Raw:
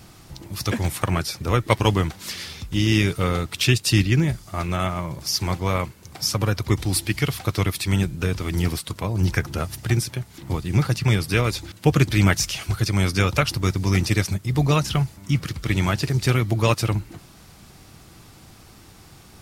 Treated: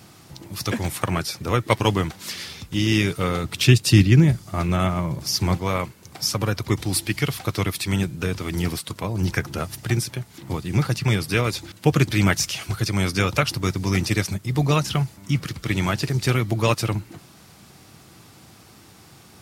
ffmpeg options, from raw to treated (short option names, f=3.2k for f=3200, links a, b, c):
-filter_complex "[0:a]asettb=1/sr,asplit=3[a][b][c];[a]atrim=end=3.444[d];[b]atrim=start=3.44:end=5.58,asetpts=PTS-STARTPTS,afade=t=in:d=0.004:c=qsin,afade=t=out:st=2.136:d=0.004:c=qsin,lowshelf=f=340:g=7.5[e];[c]atrim=start=5.576[f];[d][e]acrossfade=d=0.004:c1=hsin:c2=qsin[g];[g][f]acrossfade=d=0.004:c1=qsin:c2=hsin,highpass=100"